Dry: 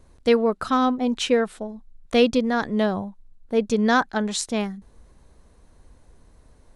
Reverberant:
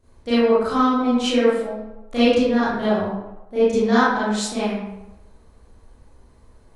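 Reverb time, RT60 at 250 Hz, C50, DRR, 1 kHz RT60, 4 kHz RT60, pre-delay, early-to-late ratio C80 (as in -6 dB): 0.95 s, 0.85 s, -3.0 dB, -12.5 dB, 0.95 s, 0.55 s, 28 ms, 1.5 dB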